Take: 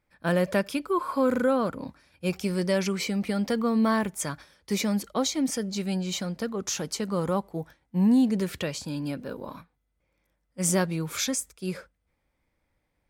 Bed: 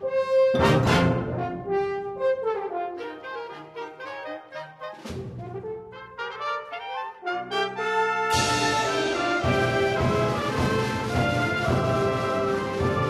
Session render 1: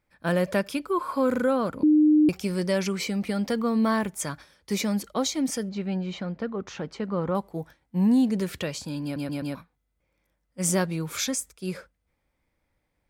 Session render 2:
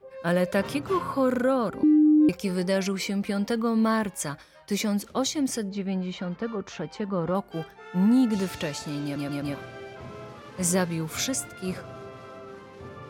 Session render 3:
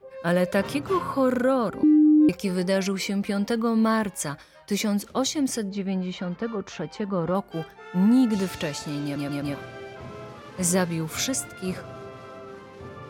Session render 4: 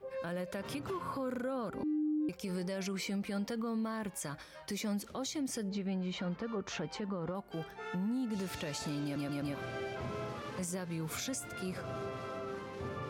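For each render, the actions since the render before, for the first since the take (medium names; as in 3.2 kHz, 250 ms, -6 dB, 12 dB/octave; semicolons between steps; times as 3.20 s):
1.83–2.29 s: bleep 304 Hz -14.5 dBFS; 5.69–7.35 s: low-pass 2.4 kHz; 9.03 s: stutter in place 0.13 s, 4 plays
add bed -18 dB
trim +1.5 dB
compression 5:1, threshold -33 dBFS, peak gain reduction 15.5 dB; peak limiter -29.5 dBFS, peak gain reduction 8.5 dB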